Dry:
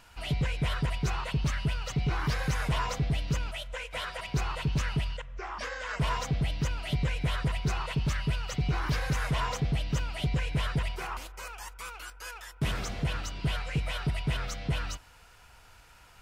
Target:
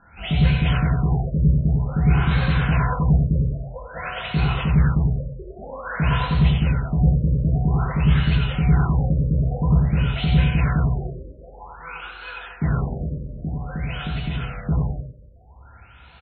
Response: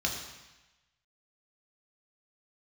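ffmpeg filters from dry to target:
-filter_complex "[0:a]asettb=1/sr,asplit=3[a][b][c];[a]atrim=end=13.004[d];[b]atrim=start=13:end=14.54,asetpts=PTS-STARTPTS,afade=t=in:d=0.004:c=qsin,afade=t=out:st=1.536:d=0.004:c=qsin,acompressor=threshold=-33dB:ratio=6[e];[c]atrim=start=14.536[f];[d][e]acrossfade=d=0.004:c1=hsin:c2=qsin[g];[g][f]acrossfade=d=0.004:c1=qsin:c2=hsin,aecho=1:1:90|98:0.501|0.251[h];[1:a]atrim=start_sample=2205,afade=t=out:st=0.38:d=0.01,atrim=end_sample=17199[i];[h][i]afir=irnorm=-1:irlink=0,afftfilt=real='re*lt(b*sr/1024,600*pow(4400/600,0.5+0.5*sin(2*PI*0.51*pts/sr)))':imag='im*lt(b*sr/1024,600*pow(4400/600,0.5+0.5*sin(2*PI*0.51*pts/sr)))':win_size=1024:overlap=0.75"

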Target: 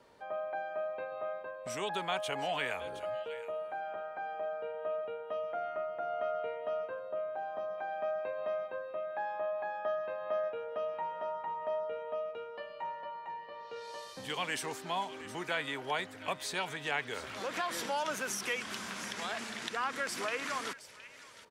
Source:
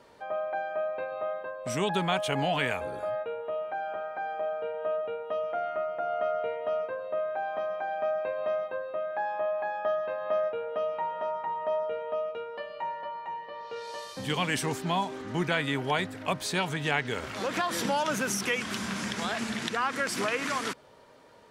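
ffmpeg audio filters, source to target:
-filter_complex "[0:a]asettb=1/sr,asplit=3[a][b][c];[a]atrim=end=6.994[d];[b]atrim=start=6.99:end=7.78,asetpts=PTS-STARTPTS,afade=t=in:d=0.004:c=qsin,afade=t=out:st=0.786:d=0.004:c=qsin,equalizer=f=2.3k:t=o:w=1.2:g=-7.5[e];[c]atrim=start=7.776[f];[d][e]acrossfade=d=0.004:c1=hsin:c2=qsin[g];[g][f]acrossfade=d=0.004:c1=qsin:c2=hsin,acrossover=split=360|1300[h][i][j];[h]acompressor=threshold=-45dB:ratio=6[k];[j]aecho=1:1:717:0.224[l];[k][i][l]amix=inputs=3:normalize=0,volume=-5.5dB"

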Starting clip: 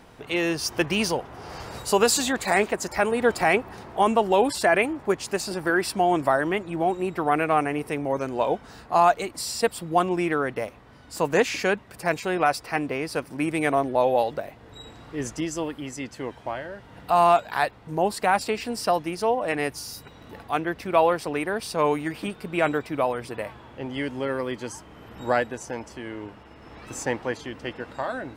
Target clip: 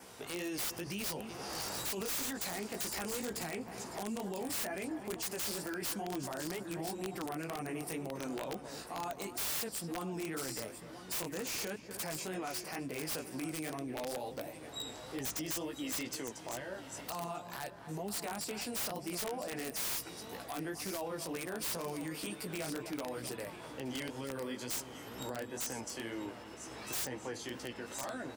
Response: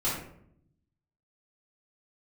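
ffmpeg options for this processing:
-filter_complex "[0:a]adynamicequalizer=threshold=0.002:dfrequency=3900:dqfactor=6.8:tfrequency=3900:tqfactor=6.8:attack=5:release=100:ratio=0.375:range=2:mode=cutabove:tftype=bell,acrossover=split=280[a][b];[b]acompressor=threshold=-37dB:ratio=3[c];[a][c]amix=inputs=2:normalize=0,asplit=2[d][e];[e]adelay=249,lowpass=f=2.2k:p=1,volume=-15dB,asplit=2[f][g];[g]adelay=249,lowpass=f=2.2k:p=1,volume=0.45,asplit=2[h][i];[i]adelay=249,lowpass=f=2.2k:p=1,volume=0.45,asplit=2[j][k];[k]adelay=249,lowpass=f=2.2k:p=1,volume=0.45[l];[f][h][j][l]amix=inputs=4:normalize=0[m];[d][m]amix=inputs=2:normalize=0,flanger=delay=15:depth=4.7:speed=2.1,highpass=f=130:p=1,alimiter=level_in=7.5dB:limit=-24dB:level=0:latency=1:release=36,volume=-7.5dB,bass=f=250:g=-3,treble=f=4k:g=13,asplit=2[n][o];[o]aecho=0:1:995|1990:0.224|0.0381[p];[n][p]amix=inputs=2:normalize=0,aeval=exprs='(mod(35.5*val(0)+1,2)-1)/35.5':c=same"

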